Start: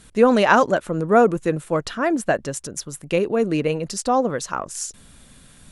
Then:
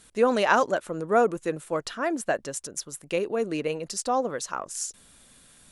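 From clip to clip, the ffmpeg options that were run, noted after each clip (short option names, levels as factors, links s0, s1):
-af "bass=f=250:g=-8,treble=f=4000:g=3,volume=0.531"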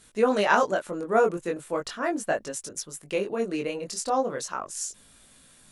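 -af "flanger=delay=18.5:depth=4.4:speed=0.38,volume=1.33"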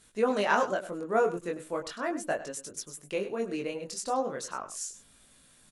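-af "aecho=1:1:100:0.2,volume=0.596"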